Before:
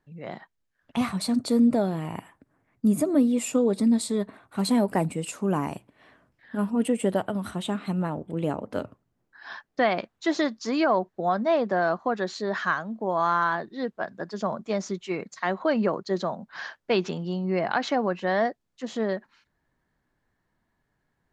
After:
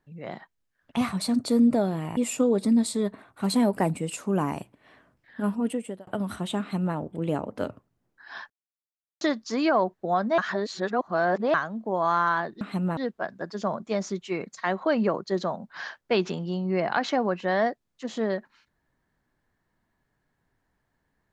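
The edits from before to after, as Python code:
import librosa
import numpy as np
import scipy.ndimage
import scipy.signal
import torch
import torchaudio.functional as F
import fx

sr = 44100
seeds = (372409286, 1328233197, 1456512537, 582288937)

y = fx.edit(x, sr, fx.cut(start_s=2.17, length_s=1.15),
    fx.fade_out_span(start_s=6.64, length_s=0.58),
    fx.duplicate(start_s=7.75, length_s=0.36, to_s=13.76),
    fx.silence(start_s=9.65, length_s=0.71),
    fx.reverse_span(start_s=11.53, length_s=1.16), tone=tone)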